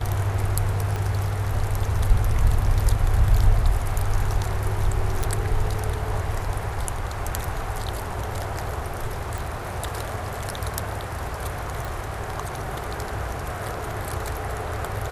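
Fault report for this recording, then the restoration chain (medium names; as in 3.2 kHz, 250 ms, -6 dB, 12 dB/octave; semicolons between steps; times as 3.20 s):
0.96 s: pop -15 dBFS
5.23 s: pop
9.38 s: pop
11.85 s: pop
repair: de-click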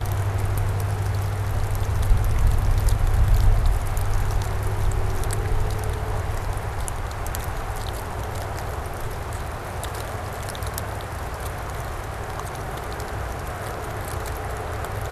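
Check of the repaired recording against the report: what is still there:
0.96 s: pop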